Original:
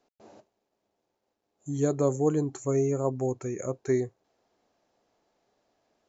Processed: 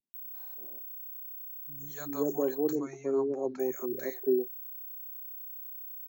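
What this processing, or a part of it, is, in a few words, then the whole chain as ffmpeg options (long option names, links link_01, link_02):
old television with a line whistle: -filter_complex "[0:a]highpass=frequency=190:width=0.5412,highpass=frequency=190:width=1.3066,equalizer=frequency=220:width_type=q:width=4:gain=4,equalizer=frequency=370:width_type=q:width=4:gain=6,equalizer=frequency=860:width_type=q:width=4:gain=4,equalizer=frequency=1600:width_type=q:width=4:gain=7,equalizer=frequency=4100:width_type=q:width=4:gain=7,lowpass=frequency=6800:width=0.5412,lowpass=frequency=6800:width=1.3066,aeval=exprs='val(0)+0.0178*sin(2*PI*15734*n/s)':channel_layout=same,asettb=1/sr,asplit=3[link_01][link_02][link_03];[link_01]atrim=end=2.614[link_04];[link_02]atrim=start=2.61:end=3.46,asetpts=PTS-STARTPTS,afade=type=in:duration=0.004:curve=qsin,afade=type=out:start_time=0.846:duration=0.004:curve=qsin,lowpass=frequency=5800:width=0.5412,lowpass=frequency=5800:width=1.3066[link_05];[link_03]atrim=start=3.456[link_06];[link_04][link_05]acrossfade=duration=0.004:curve1=hsin:curve2=qsin[link_07];[link_07][link_06]acrossfade=duration=0.004:curve1=qsin:curve2=hsin,acrossover=split=160|770[link_08][link_09][link_10];[link_10]adelay=140[link_11];[link_09]adelay=380[link_12];[link_08][link_12][link_11]amix=inputs=3:normalize=0,volume=-5dB"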